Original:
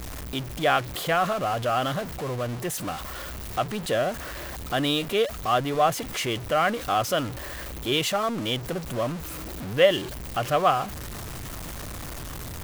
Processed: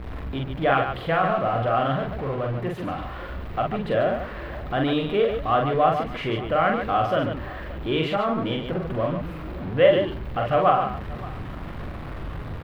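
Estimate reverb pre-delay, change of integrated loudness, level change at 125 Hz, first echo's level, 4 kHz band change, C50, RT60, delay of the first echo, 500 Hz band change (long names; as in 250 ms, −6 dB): no reverb audible, +2.5 dB, +4.0 dB, −3.0 dB, −5.5 dB, no reverb audible, no reverb audible, 44 ms, +3.0 dB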